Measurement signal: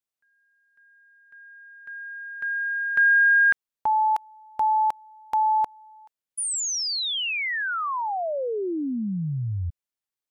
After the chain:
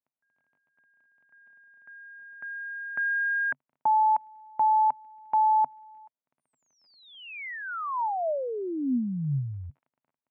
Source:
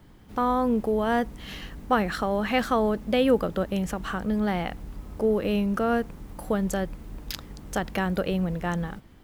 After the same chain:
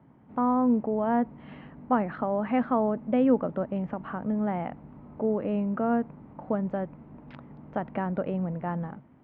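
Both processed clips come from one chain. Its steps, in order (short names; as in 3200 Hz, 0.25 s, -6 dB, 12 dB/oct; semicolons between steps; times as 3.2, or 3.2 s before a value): crackle 27/s -45 dBFS; speaker cabinet 110–2100 Hz, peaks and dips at 140 Hz +9 dB, 250 Hz +9 dB, 630 Hz +6 dB, 920 Hz +6 dB, 1700 Hz -4 dB; gain -6 dB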